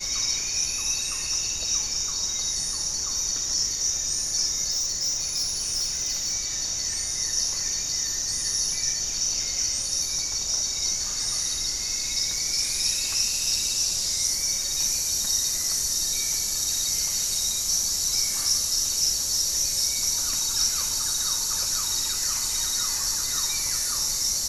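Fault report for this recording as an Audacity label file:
4.700000	6.350000	clipping −22 dBFS

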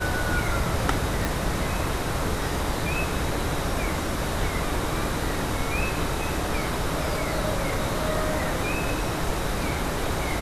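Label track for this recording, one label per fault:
1.250000	1.250000	click

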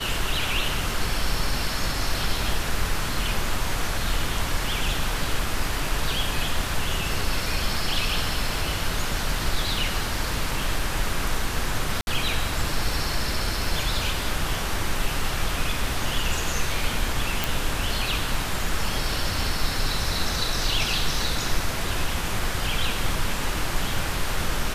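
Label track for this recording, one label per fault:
12.010000	12.070000	drop-out 61 ms
17.440000	17.440000	click

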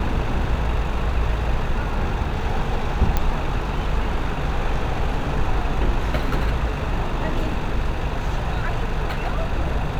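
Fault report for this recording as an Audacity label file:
3.170000	3.170000	click −7 dBFS

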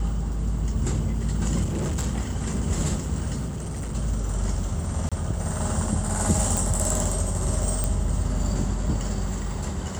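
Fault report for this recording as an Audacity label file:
1.630000	2.070000	clipping −23 dBFS
3.480000	3.950000	clipping −27 dBFS
5.090000	5.120000	drop-out 26 ms
6.570000	6.570000	click
7.840000	7.840000	click −10 dBFS

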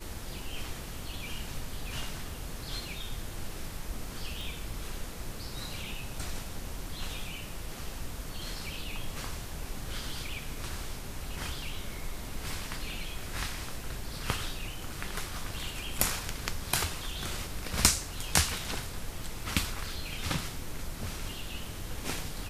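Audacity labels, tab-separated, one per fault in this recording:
4.410000	4.410000	click

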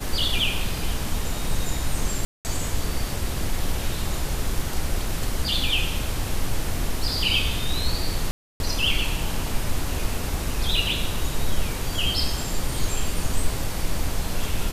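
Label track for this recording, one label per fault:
2.250000	2.450000	drop-out 199 ms
8.310000	8.600000	drop-out 291 ms

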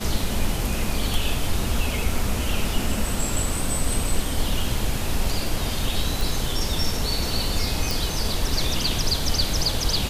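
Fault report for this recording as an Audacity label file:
6.210000	6.210000	click
7.910000	7.910000	click

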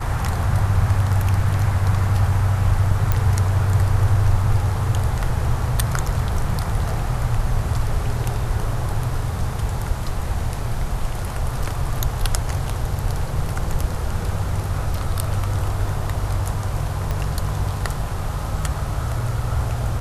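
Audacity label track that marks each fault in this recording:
3.120000	3.120000	click −6 dBFS
17.110000	17.110000	click −12 dBFS

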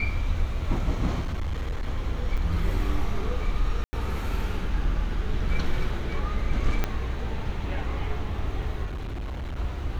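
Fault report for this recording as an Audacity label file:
1.200000	1.860000	clipping −25 dBFS
2.370000	2.380000	drop-out 6.1 ms
3.840000	3.930000	drop-out 90 ms
6.840000	6.840000	click −11 dBFS
8.850000	9.570000	clipping −29.5 dBFS

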